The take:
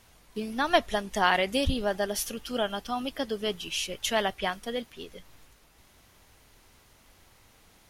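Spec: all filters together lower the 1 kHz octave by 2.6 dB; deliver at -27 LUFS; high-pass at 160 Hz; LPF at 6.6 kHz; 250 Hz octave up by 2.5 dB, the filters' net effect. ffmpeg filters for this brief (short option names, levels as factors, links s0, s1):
-af "highpass=160,lowpass=6600,equalizer=f=250:t=o:g=4,equalizer=f=1000:t=o:g=-4,volume=1.33"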